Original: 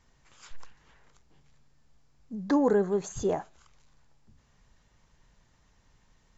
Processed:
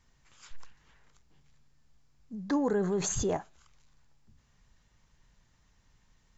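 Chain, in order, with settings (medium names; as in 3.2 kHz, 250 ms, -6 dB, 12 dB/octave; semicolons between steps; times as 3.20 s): peaking EQ 550 Hz -4.5 dB 2.2 oct; 2.77–3.37 s: level flattener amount 70%; trim -1.5 dB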